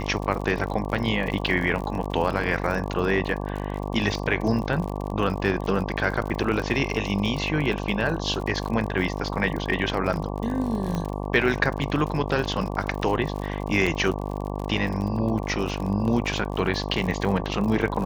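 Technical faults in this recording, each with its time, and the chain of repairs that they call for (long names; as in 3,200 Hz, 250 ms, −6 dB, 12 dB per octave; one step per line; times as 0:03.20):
mains buzz 50 Hz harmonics 23 −30 dBFS
surface crackle 59 per second −30 dBFS
0:10.95: click −16 dBFS
0:13.86–0:13.87: drop-out 5.8 ms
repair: click removal
hum removal 50 Hz, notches 23
repair the gap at 0:13.86, 5.8 ms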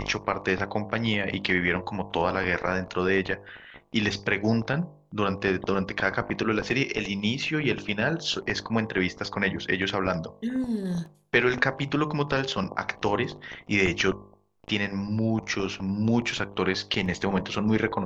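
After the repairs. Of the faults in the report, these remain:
0:10.95: click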